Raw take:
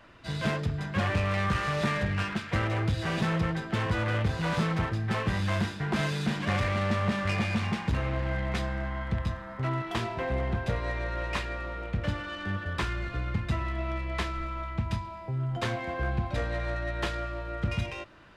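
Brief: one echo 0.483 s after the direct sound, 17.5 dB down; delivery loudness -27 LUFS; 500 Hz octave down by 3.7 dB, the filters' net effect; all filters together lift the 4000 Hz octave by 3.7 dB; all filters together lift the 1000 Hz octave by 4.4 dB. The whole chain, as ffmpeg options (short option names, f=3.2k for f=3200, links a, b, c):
-af "equalizer=f=500:t=o:g=-7.5,equalizer=f=1k:t=o:g=7,equalizer=f=4k:t=o:g=4.5,aecho=1:1:483:0.133,volume=2.5dB"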